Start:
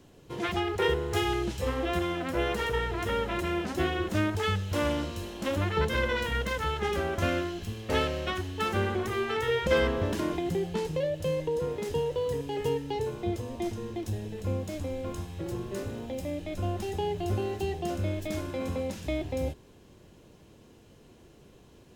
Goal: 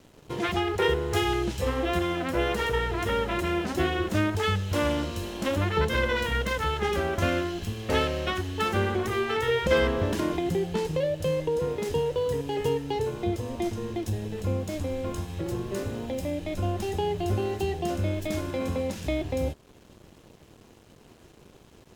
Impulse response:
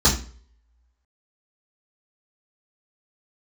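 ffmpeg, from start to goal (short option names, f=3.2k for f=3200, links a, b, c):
-filter_complex "[0:a]asplit=2[a][b];[b]acompressor=threshold=-39dB:ratio=6,volume=0.5dB[c];[a][c]amix=inputs=2:normalize=0,aeval=exprs='sgn(val(0))*max(abs(val(0))-0.00251,0)':c=same,volume=1dB"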